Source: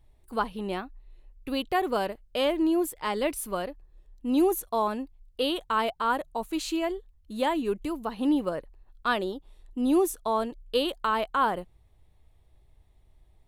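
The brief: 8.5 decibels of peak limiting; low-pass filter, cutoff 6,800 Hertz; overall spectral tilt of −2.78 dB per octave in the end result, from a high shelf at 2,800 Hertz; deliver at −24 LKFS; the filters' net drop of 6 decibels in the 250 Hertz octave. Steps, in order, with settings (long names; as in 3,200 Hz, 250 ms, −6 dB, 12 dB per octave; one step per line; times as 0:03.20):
low-pass filter 6,800 Hz
parametric band 250 Hz −8.5 dB
high-shelf EQ 2,800 Hz +6.5 dB
level +8.5 dB
brickwall limiter −12 dBFS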